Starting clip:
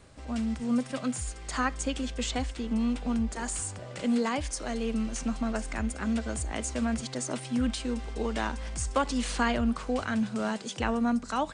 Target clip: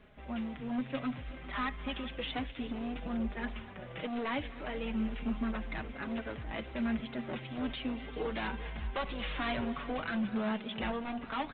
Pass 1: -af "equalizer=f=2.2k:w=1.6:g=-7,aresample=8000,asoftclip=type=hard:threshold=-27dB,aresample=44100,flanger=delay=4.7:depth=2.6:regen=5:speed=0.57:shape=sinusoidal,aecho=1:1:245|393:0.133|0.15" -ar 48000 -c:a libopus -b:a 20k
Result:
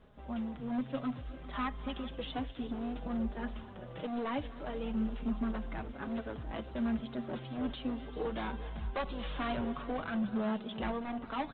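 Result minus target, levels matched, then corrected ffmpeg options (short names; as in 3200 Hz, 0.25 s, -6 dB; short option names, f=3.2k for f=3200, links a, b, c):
2000 Hz band -4.5 dB
-af "equalizer=f=2.2k:w=1.6:g=4.5,aresample=8000,asoftclip=type=hard:threshold=-27dB,aresample=44100,flanger=delay=4.7:depth=2.6:regen=5:speed=0.57:shape=sinusoidal,aecho=1:1:245|393:0.133|0.15" -ar 48000 -c:a libopus -b:a 20k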